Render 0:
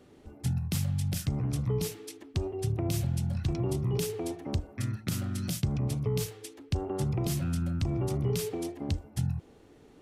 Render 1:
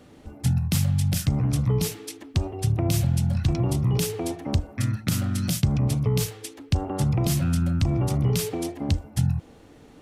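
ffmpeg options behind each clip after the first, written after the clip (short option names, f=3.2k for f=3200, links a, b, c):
-af "equalizer=f=390:w=6.4:g=-10,volume=7.5dB"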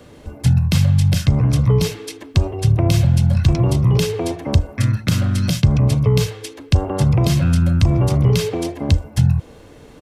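-filter_complex "[0:a]aecho=1:1:1.9:0.31,acrossover=split=150|5600[a][b][c];[c]acompressor=threshold=-44dB:ratio=6[d];[a][b][d]amix=inputs=3:normalize=0,volume=7.5dB"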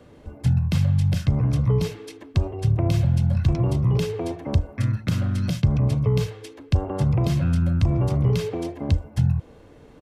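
-af "highshelf=f=3k:g=-8.5,volume=-5.5dB"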